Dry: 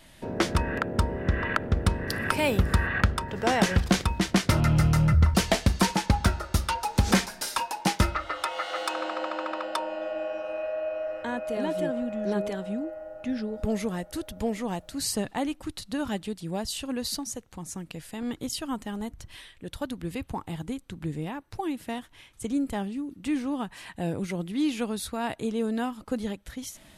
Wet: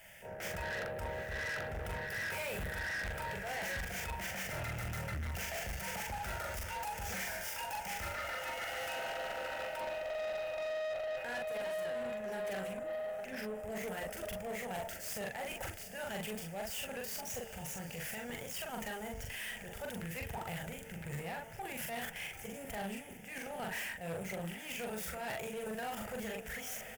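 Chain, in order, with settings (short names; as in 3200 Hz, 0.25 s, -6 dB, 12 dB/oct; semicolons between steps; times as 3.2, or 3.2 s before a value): median filter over 5 samples; tilt +2.5 dB/oct; de-hum 224.9 Hz, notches 5; level quantiser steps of 17 dB; transient shaper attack -11 dB, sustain +6 dB; reverse; compressor, threshold -45 dBFS, peak gain reduction 14 dB; reverse; fixed phaser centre 1100 Hz, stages 6; doubler 42 ms -3 dB; on a send: diffused feedback echo 0.806 s, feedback 49%, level -15 dB; on the sum: tube stage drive 50 dB, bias 0.25; gain +14.5 dB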